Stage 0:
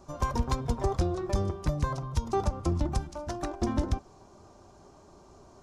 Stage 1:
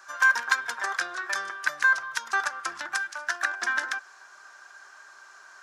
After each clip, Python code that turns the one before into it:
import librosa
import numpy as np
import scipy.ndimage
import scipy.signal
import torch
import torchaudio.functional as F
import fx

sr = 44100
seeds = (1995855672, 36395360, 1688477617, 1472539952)

y = fx.highpass_res(x, sr, hz=1600.0, q=10.0)
y = y * 10.0 ** (7.5 / 20.0)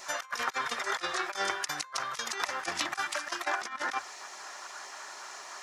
y = fx.hum_notches(x, sr, base_hz=50, count=2)
y = fx.spec_gate(y, sr, threshold_db=-10, keep='weak')
y = fx.over_compress(y, sr, threshold_db=-40.0, ratio=-0.5)
y = y * 10.0 ** (7.0 / 20.0)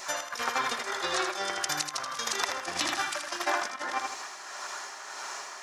y = fx.echo_feedback(x, sr, ms=80, feedback_pct=41, wet_db=-5.0)
y = y * (1.0 - 0.46 / 2.0 + 0.46 / 2.0 * np.cos(2.0 * np.pi * 1.7 * (np.arange(len(y)) / sr)))
y = fx.dynamic_eq(y, sr, hz=1600.0, q=0.95, threshold_db=-42.0, ratio=4.0, max_db=-4)
y = y * 10.0 ** (5.0 / 20.0)